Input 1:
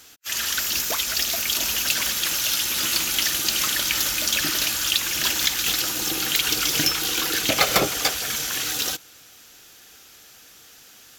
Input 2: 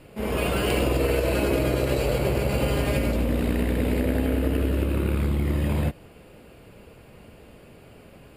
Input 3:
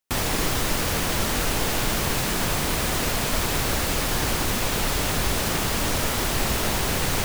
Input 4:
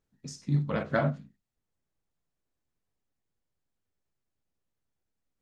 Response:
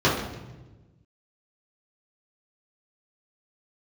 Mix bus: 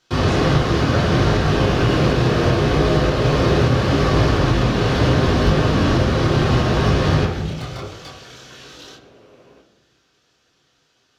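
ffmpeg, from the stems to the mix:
-filter_complex "[0:a]lowpass=4.8k,flanger=delay=22.5:depth=6.1:speed=2,asoftclip=type=tanh:threshold=-22dB,volume=-10.5dB,asplit=2[a][b];[b]volume=-18.5dB[c];[1:a]acrossover=split=250 4200:gain=0.141 1 0.158[d][e][f];[d][e][f]amix=inputs=3:normalize=0,adelay=1250,volume=-3dB,asplit=2[g][h];[h]volume=-18.5dB[i];[2:a]flanger=delay=19:depth=7.8:speed=0.72,lowpass=4.9k,bandreject=f=980:w=17,volume=-4dB,asplit=2[j][k];[k]volume=-5.5dB[l];[3:a]volume=1.5dB[m];[4:a]atrim=start_sample=2205[n];[c][i][l]amix=inputs=3:normalize=0[o];[o][n]afir=irnorm=-1:irlink=0[p];[a][g][j][m][p]amix=inputs=5:normalize=0,alimiter=limit=-6dB:level=0:latency=1:release=408"

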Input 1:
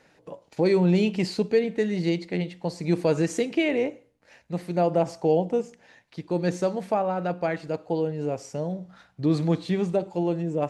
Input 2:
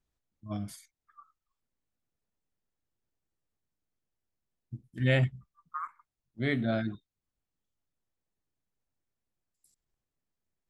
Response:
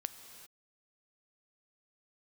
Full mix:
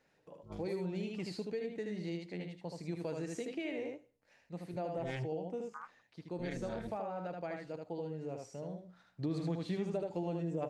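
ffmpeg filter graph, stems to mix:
-filter_complex "[0:a]volume=-2.5dB,afade=t=in:st=9.12:d=0.22:silence=0.251189,asplit=3[a][b][c];[b]volume=-4dB[d];[1:a]tremolo=f=260:d=0.974,volume=-7dB[e];[c]apad=whole_len=471835[f];[e][f]sidechaincompress=threshold=-34dB:ratio=8:attack=16:release=390[g];[d]aecho=0:1:77:1[h];[a][g][h]amix=inputs=3:normalize=0,acompressor=threshold=-35dB:ratio=4"

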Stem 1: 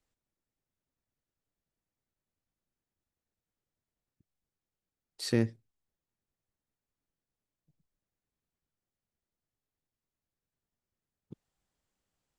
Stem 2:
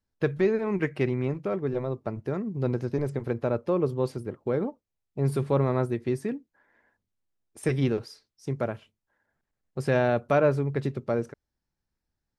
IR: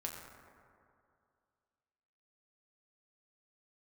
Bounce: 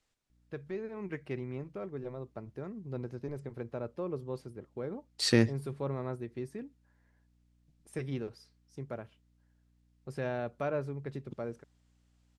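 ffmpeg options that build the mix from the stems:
-filter_complex "[0:a]lowpass=9.8k,equalizer=f=3.6k:w=0.31:g=5.5,volume=2.5dB[a];[1:a]dynaudnorm=f=180:g=7:m=5dB,aeval=exprs='val(0)+0.00282*(sin(2*PI*60*n/s)+sin(2*PI*2*60*n/s)/2+sin(2*PI*3*60*n/s)/3+sin(2*PI*4*60*n/s)/4+sin(2*PI*5*60*n/s)/5)':c=same,adelay=300,volume=-16.5dB[b];[a][b]amix=inputs=2:normalize=0"

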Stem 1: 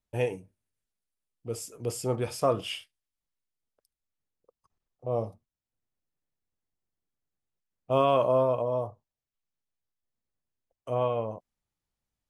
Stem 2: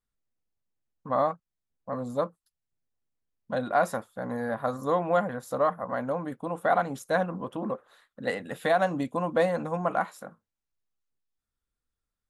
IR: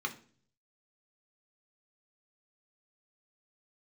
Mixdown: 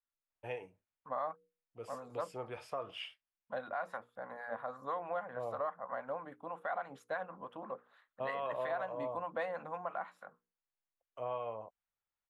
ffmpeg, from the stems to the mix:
-filter_complex "[0:a]acompressor=threshold=-26dB:ratio=3,adelay=300,volume=-4.5dB[a];[1:a]bandreject=f=60:t=h:w=6,bandreject=f=120:t=h:w=6,bandreject=f=180:t=h:w=6,bandreject=f=240:t=h:w=6,bandreject=f=300:t=h:w=6,bandreject=f=360:t=h:w=6,bandreject=f=420:t=h:w=6,bandreject=f=480:t=h:w=6,acrossover=split=750[b][c];[b]aeval=exprs='val(0)*(1-0.5/2+0.5/2*cos(2*PI*6.2*n/s))':c=same[d];[c]aeval=exprs='val(0)*(1-0.5/2-0.5/2*cos(2*PI*6.2*n/s))':c=same[e];[d][e]amix=inputs=2:normalize=0,volume=-3.5dB[f];[a][f]amix=inputs=2:normalize=0,acrossover=split=570 3200:gain=0.2 1 0.112[g][h][i];[g][h][i]amix=inputs=3:normalize=0,alimiter=level_in=3.5dB:limit=-24dB:level=0:latency=1:release=181,volume=-3.5dB"

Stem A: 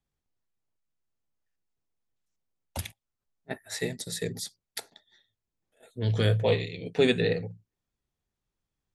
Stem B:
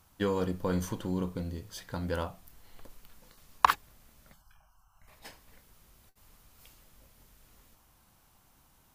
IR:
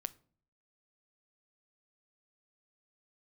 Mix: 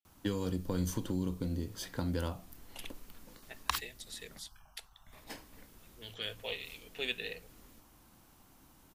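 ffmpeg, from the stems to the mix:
-filter_complex "[0:a]highpass=f=940:p=1,equalizer=f=2.9k:t=o:w=0.53:g=12.5,volume=-12dB[a];[1:a]equalizer=f=290:t=o:w=0.94:g=8.5,acrossover=split=130|3000[b][c][d];[c]acompressor=threshold=-36dB:ratio=6[e];[b][e][d]amix=inputs=3:normalize=0,adelay=50,volume=1.5dB[f];[a][f]amix=inputs=2:normalize=0"

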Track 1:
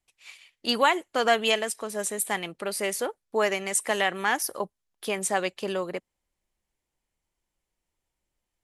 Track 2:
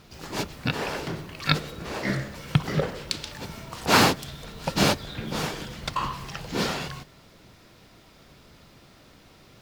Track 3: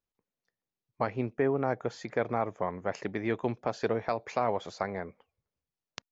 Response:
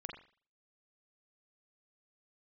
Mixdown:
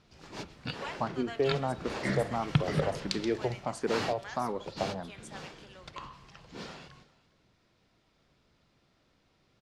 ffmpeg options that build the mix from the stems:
-filter_complex "[0:a]highpass=f=1.3k:p=1,volume=-19dB,asplit=2[a][b];[b]volume=-6dB[c];[1:a]volume=-6dB,afade=t=in:st=1.64:d=0.26:silence=0.446684,afade=t=out:st=3.13:d=0.68:silence=0.251189,asplit=3[d][e][f];[e]volume=-9.5dB[g];[f]volume=-20.5dB[h];[2:a]equalizer=f=2k:w=1.1:g=-8,asplit=2[i][j];[j]afreqshift=1.5[k];[i][k]amix=inputs=2:normalize=1,volume=0dB,asplit=2[l][m];[m]volume=-9dB[n];[3:a]atrim=start_sample=2205[o];[c][g][n]amix=inputs=3:normalize=0[p];[p][o]afir=irnorm=-1:irlink=0[q];[h]aecho=0:1:406:1[r];[a][d][l][q][r]amix=inputs=5:normalize=0,lowpass=6.9k"

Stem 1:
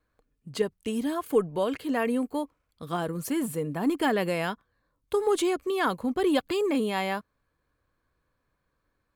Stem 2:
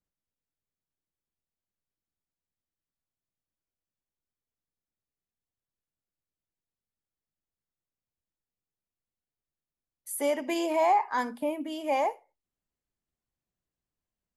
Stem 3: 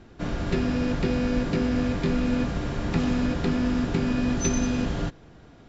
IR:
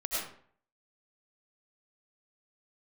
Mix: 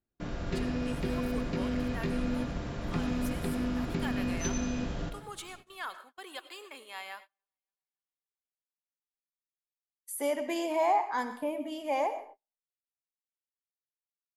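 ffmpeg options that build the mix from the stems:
-filter_complex "[0:a]highpass=1k,volume=-10.5dB,asplit=3[a][b][c];[b]volume=-15.5dB[d];[c]volume=-23dB[e];[1:a]volume=-4.5dB,asplit=2[f][g];[g]volume=-14dB[h];[2:a]volume=-10dB,asplit=2[i][j];[j]volume=-10dB[k];[3:a]atrim=start_sample=2205[l];[d][h][k]amix=inputs=3:normalize=0[m];[m][l]afir=irnorm=-1:irlink=0[n];[e]aecho=0:1:280|560|840|1120|1400|1680|1960|2240|2520:1|0.59|0.348|0.205|0.121|0.0715|0.0422|0.0249|0.0147[o];[a][f][i][n][o]amix=inputs=5:normalize=0,agate=range=-32dB:threshold=-49dB:ratio=16:detection=peak"

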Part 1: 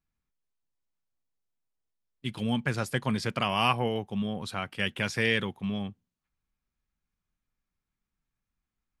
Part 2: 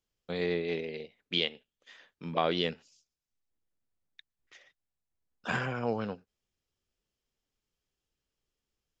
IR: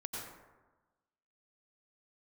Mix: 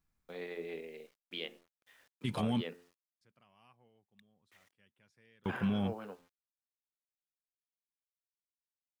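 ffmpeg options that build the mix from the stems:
-filter_complex "[0:a]equalizer=f=3.1k:w=1.5:g=-3.5,volume=3dB,asplit=3[a][b][c];[a]atrim=end=2.64,asetpts=PTS-STARTPTS,afade=t=out:st=2.636:d=0.004:c=hsin[d];[b]atrim=start=2.64:end=3.21,asetpts=PTS-STARTPTS,volume=0[e];[c]atrim=start=3.21,asetpts=PTS-STARTPTS,afade=t=in:d=0.004:c=hsin[f];[d][e][f]concat=n=3:v=0:a=1[g];[1:a]acrossover=split=210 3300:gain=0.178 1 0.158[h][i][j];[h][i][j]amix=inputs=3:normalize=0,bandreject=f=87.29:t=h:w=4,bandreject=f=174.58:t=h:w=4,bandreject=f=261.87:t=h:w=4,bandreject=f=349.16:t=h:w=4,bandreject=f=436.45:t=h:w=4,bandreject=f=523.74:t=h:w=4,bandreject=f=611.03:t=h:w=4,bandreject=f=698.32:t=h:w=4,bandreject=f=785.61:t=h:w=4,bandreject=f=872.9:t=h:w=4,bandreject=f=960.19:t=h:w=4,bandreject=f=1.04748k:t=h:w=4,bandreject=f=1.13477k:t=h:w=4,bandreject=f=1.22206k:t=h:w=4,bandreject=f=1.30935k:t=h:w=4,bandreject=f=1.39664k:t=h:w=4,bandreject=f=1.48393k:t=h:w=4,bandreject=f=1.57122k:t=h:w=4,bandreject=f=1.65851k:t=h:w=4,bandreject=f=1.7458k:t=h:w=4,bandreject=f=1.83309k:t=h:w=4,bandreject=f=1.92038k:t=h:w=4,acrusher=bits=9:mix=0:aa=0.000001,volume=-8.5dB,asplit=2[k][l];[l]apad=whole_len=396920[m];[g][m]sidechaingate=range=-42dB:threshold=-58dB:ratio=16:detection=peak[n];[n][k]amix=inputs=2:normalize=0,alimiter=limit=-24dB:level=0:latency=1:release=41"

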